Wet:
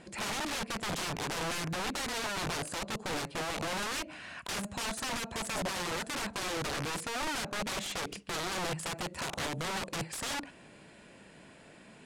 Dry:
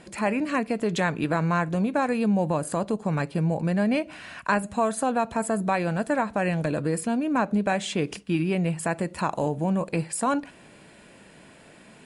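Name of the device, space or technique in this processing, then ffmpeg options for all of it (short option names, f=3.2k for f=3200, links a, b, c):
overflowing digital effects unit: -af "aeval=exprs='(mod(18.8*val(0)+1,2)-1)/18.8':c=same,lowpass=9.5k,volume=-4dB"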